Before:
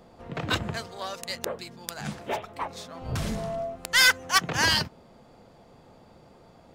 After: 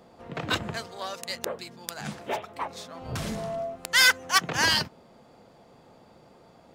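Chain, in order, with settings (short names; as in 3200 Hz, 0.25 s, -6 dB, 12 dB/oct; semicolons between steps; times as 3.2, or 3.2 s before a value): low shelf 79 Hz -11.5 dB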